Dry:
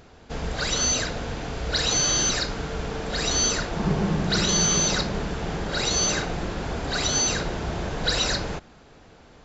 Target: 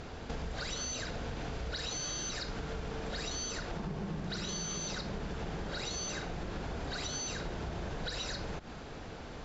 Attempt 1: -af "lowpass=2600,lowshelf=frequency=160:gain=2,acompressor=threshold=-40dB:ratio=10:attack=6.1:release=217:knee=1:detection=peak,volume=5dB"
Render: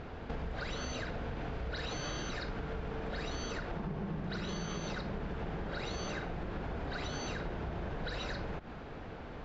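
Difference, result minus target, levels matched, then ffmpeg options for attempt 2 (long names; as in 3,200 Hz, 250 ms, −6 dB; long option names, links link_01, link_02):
8,000 Hz band −10.0 dB
-af "lowpass=7600,lowshelf=frequency=160:gain=2,acompressor=threshold=-40dB:ratio=10:attack=6.1:release=217:knee=1:detection=peak,volume=5dB"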